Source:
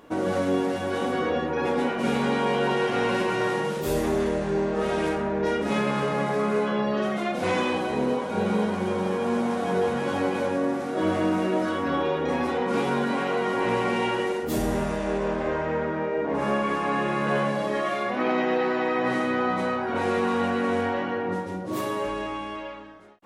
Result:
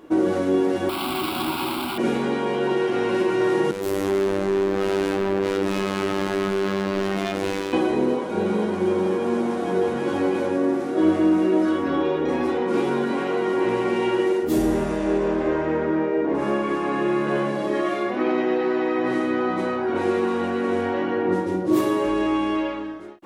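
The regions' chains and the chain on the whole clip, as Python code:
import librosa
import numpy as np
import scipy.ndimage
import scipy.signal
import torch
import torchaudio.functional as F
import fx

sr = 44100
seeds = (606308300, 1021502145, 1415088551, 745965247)

y = fx.chain(x, sr, fx.clip_1bit(),
    fx.highpass(hz=200.0, slope=6),
    fx.fixed_phaser(hz=1800.0, stages=6), at=(0.89, 1.98))
y = fx.chain(y, sr, fx.overload_stage(gain_db=31.5),
    fx.robotise(hz=97.7), at=(3.71, 7.73))
y = fx.rider(y, sr, range_db=10, speed_s=0.5)
y = fx.peak_eq(y, sr, hz=340.0, db=14.5, octaves=0.35)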